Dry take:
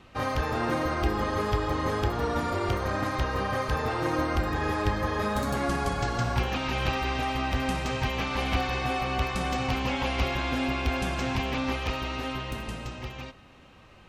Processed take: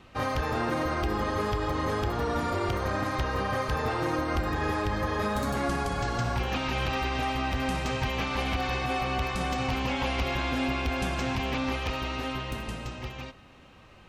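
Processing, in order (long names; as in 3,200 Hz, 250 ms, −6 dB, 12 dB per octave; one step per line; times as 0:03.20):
brickwall limiter −19 dBFS, peak gain reduction 6 dB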